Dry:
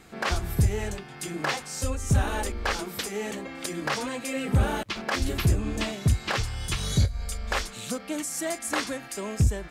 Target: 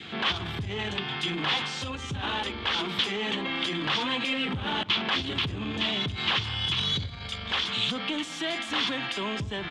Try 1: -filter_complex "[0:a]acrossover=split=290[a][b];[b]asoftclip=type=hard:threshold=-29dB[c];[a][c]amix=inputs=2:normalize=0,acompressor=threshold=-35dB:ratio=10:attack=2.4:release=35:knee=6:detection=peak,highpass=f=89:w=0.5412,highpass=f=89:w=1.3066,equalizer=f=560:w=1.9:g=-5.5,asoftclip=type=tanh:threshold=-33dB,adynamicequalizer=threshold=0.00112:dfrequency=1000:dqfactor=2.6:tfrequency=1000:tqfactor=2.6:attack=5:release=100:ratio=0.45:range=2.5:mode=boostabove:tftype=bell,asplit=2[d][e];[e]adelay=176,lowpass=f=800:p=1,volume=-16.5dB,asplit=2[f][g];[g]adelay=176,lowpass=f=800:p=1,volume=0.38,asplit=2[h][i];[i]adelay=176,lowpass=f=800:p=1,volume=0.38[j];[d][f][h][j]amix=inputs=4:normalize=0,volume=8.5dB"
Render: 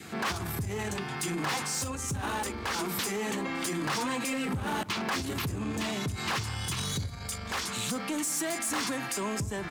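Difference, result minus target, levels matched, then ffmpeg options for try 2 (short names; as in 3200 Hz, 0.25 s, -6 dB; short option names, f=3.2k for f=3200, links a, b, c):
4000 Hz band -6.5 dB
-filter_complex "[0:a]acrossover=split=290[a][b];[b]asoftclip=type=hard:threshold=-29dB[c];[a][c]amix=inputs=2:normalize=0,acompressor=threshold=-35dB:ratio=10:attack=2.4:release=35:knee=6:detection=peak,highpass=f=89:w=0.5412,highpass=f=89:w=1.3066,equalizer=f=560:w=1.9:g=-5.5,asoftclip=type=tanh:threshold=-33dB,adynamicequalizer=threshold=0.00112:dfrequency=1000:dqfactor=2.6:tfrequency=1000:tqfactor=2.6:attack=5:release=100:ratio=0.45:range=2.5:mode=boostabove:tftype=bell,lowpass=f=3.3k:t=q:w=5.5,asplit=2[d][e];[e]adelay=176,lowpass=f=800:p=1,volume=-16.5dB,asplit=2[f][g];[g]adelay=176,lowpass=f=800:p=1,volume=0.38,asplit=2[h][i];[i]adelay=176,lowpass=f=800:p=1,volume=0.38[j];[d][f][h][j]amix=inputs=4:normalize=0,volume=8.5dB"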